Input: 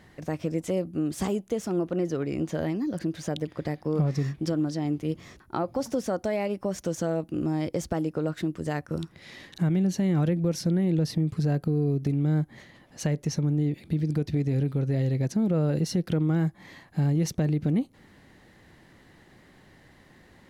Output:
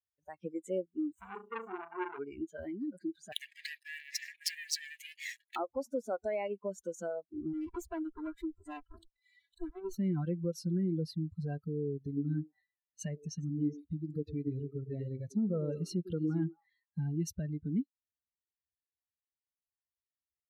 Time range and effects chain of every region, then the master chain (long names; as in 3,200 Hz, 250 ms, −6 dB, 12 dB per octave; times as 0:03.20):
0:01.12–0:02.19: running median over 9 samples + flutter between parallel walls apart 6.1 metres, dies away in 0.65 s + saturating transformer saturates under 1,500 Hz
0:03.32–0:05.56: leveller curve on the samples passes 5 + linear-phase brick-wall high-pass 1,600 Hz
0:07.53–0:09.99: lower of the sound and its delayed copy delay 3 ms + hard clipping −24.5 dBFS
0:11.98–0:16.99: notch filter 1,500 Hz, Q 13 + echo through a band-pass that steps 104 ms, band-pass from 360 Hz, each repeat 1.4 octaves, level −3 dB
whole clip: spectral dynamics exaggerated over time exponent 2; noise reduction from a noise print of the clip's start 20 dB; dynamic equaliser 130 Hz, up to −8 dB, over −45 dBFS, Q 2.5; level −3 dB